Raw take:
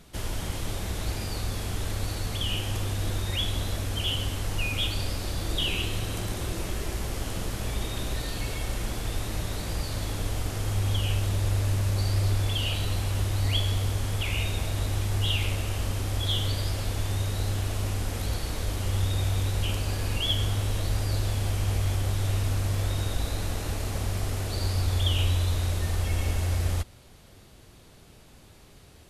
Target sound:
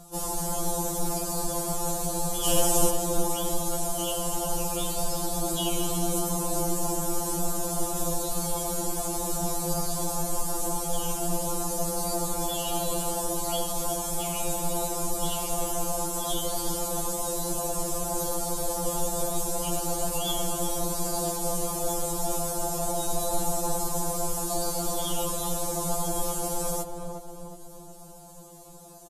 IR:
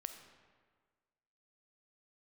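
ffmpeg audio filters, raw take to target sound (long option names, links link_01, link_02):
-filter_complex "[0:a]firequalizer=gain_entry='entry(210,0);entry(790,10);entry(1900,-14);entry(7100,10)':delay=0.05:min_phase=1,asettb=1/sr,asplit=3[link_01][link_02][link_03];[link_01]atrim=end=2.444[link_04];[link_02]atrim=start=2.44:end=2.9,asetpts=PTS-STARTPTS,afade=type=in:duration=0.004:curve=qsin,afade=type=out:start_time=0.456:duration=0.004:curve=qsin,acontrast=73[link_05];[link_03]atrim=start=2.896[link_06];[link_04][link_05]acrossfade=duration=0.004:curve1=hsin:curve2=qsin[link_07];[link_07][link_06]acrossfade=duration=0.004:curve1=qsin:curve2=hsin,asplit=2[link_08][link_09];[link_09]adelay=363,lowpass=frequency=1400:poles=1,volume=-5dB,asplit=2[link_10][link_11];[link_11]adelay=363,lowpass=frequency=1400:poles=1,volume=0.54,asplit=2[link_12][link_13];[link_13]adelay=363,lowpass=frequency=1400:poles=1,volume=0.54,asplit=2[link_14][link_15];[link_15]adelay=363,lowpass=frequency=1400:poles=1,volume=0.54,asplit=2[link_16][link_17];[link_17]adelay=363,lowpass=frequency=1400:poles=1,volume=0.54,asplit=2[link_18][link_19];[link_19]adelay=363,lowpass=frequency=1400:poles=1,volume=0.54,asplit=2[link_20][link_21];[link_21]adelay=363,lowpass=frequency=1400:poles=1,volume=0.54[link_22];[link_08][link_10][link_12][link_14][link_16][link_18][link_20][link_22]amix=inputs=8:normalize=0,afftfilt=real='re*2.83*eq(mod(b,8),0)':imag='im*2.83*eq(mod(b,8),0)':win_size=2048:overlap=0.75,volume=3.5dB"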